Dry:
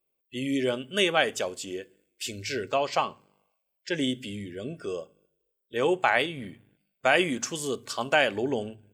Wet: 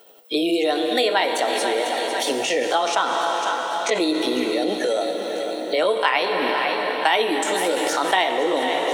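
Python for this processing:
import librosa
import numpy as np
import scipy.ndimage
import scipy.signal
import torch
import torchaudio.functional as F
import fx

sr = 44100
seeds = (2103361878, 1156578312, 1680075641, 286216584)

p1 = fx.pitch_heads(x, sr, semitones=3.5)
p2 = scipy.signal.sosfilt(scipy.signal.butter(4, 270.0, 'highpass', fs=sr, output='sos'), p1)
p3 = p2 + fx.echo_feedback(p2, sr, ms=497, feedback_pct=42, wet_db=-16.5, dry=0)
p4 = fx.rev_plate(p3, sr, seeds[0], rt60_s=4.2, hf_ratio=0.8, predelay_ms=0, drr_db=8.0)
p5 = fx.over_compress(p4, sr, threshold_db=-37.0, ratio=-1.0)
p6 = p4 + F.gain(torch.from_numpy(p5), -1.0).numpy()
p7 = fx.high_shelf(p6, sr, hz=4500.0, db=-6.0)
p8 = fx.band_squash(p7, sr, depth_pct=70)
y = F.gain(torch.from_numpy(p8), 6.0).numpy()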